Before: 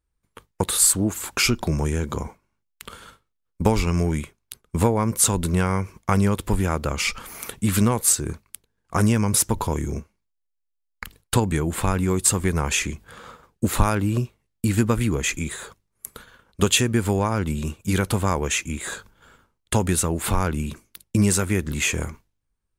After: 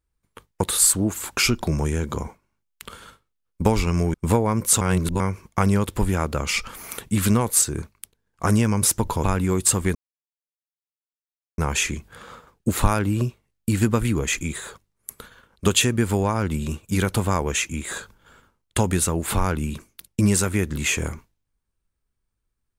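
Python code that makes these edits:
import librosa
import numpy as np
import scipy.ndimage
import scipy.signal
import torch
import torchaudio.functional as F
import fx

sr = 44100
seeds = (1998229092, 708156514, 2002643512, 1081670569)

y = fx.edit(x, sr, fx.cut(start_s=4.14, length_s=0.51),
    fx.reverse_span(start_s=5.32, length_s=0.39),
    fx.cut(start_s=9.75, length_s=2.08),
    fx.insert_silence(at_s=12.54, length_s=1.63), tone=tone)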